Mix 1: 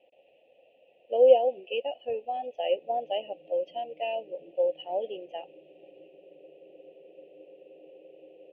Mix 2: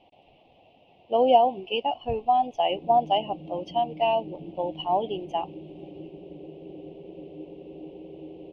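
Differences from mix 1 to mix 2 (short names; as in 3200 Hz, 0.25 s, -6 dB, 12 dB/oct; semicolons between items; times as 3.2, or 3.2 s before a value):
speech -6.0 dB; master: remove vowel filter e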